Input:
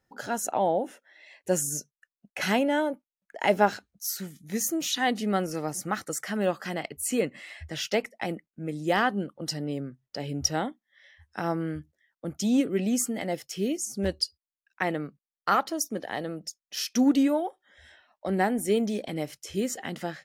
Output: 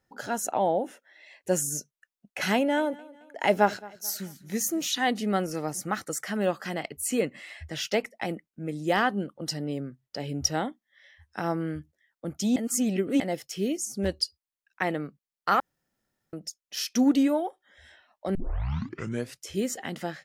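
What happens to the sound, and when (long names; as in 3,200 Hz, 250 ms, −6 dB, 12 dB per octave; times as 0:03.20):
0:02.55–0:04.83: repeating echo 219 ms, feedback 42%, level −21.5 dB
0:12.56–0:13.20: reverse
0:15.60–0:16.33: fill with room tone
0:18.35: tape start 1.07 s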